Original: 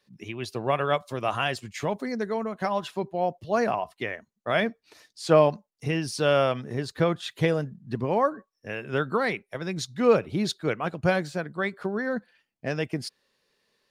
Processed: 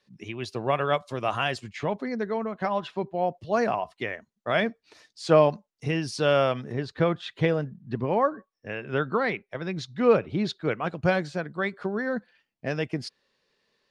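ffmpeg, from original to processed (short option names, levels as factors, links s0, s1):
-af "asetnsamples=n=441:p=0,asendcmd='1.7 lowpass f 3900;3.35 lowpass f 7400;6.72 lowpass f 3900;10.75 lowpass f 6200',lowpass=7900"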